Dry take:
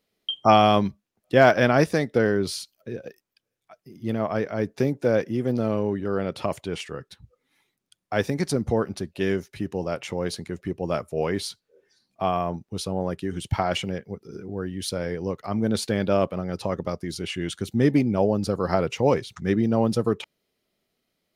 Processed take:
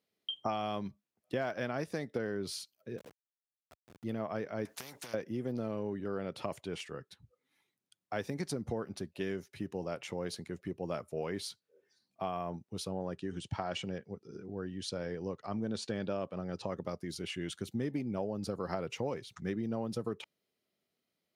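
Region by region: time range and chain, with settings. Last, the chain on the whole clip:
2.98–4.04 level-crossing sampler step -36.5 dBFS + transient shaper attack -8 dB, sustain -4 dB
4.65–5.14 compressor 12:1, threshold -25 dBFS + spectral compressor 4:1
12.89–16.7 LPF 8200 Hz 24 dB/oct + notch 2100 Hz
whole clip: HPF 90 Hz; compressor 6:1, threshold -23 dBFS; gain -8.5 dB

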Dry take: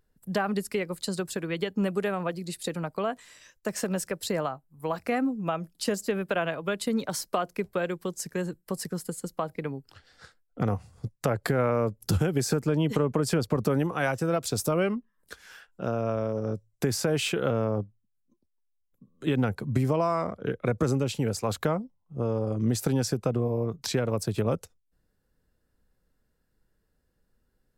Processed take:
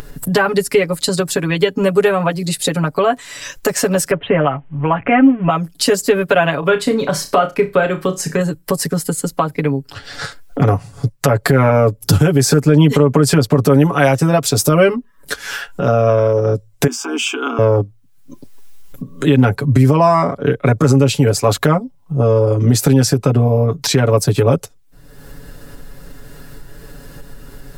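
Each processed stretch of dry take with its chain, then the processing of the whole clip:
4.11–5.5 G.711 law mismatch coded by mu + steep low-pass 3200 Hz 96 dB/oct
6.59–8.41 high shelf 4800 Hz -10 dB + flutter echo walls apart 5.5 m, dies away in 0.21 s + mismatched tape noise reduction encoder only
16.87–17.59 AM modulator 70 Hz, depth 50% + rippled Chebyshev high-pass 230 Hz, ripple 3 dB + fixed phaser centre 2800 Hz, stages 8
whole clip: comb 7.1 ms, depth 94%; upward compressor, threshold -26 dBFS; maximiser +13 dB; gain -1 dB

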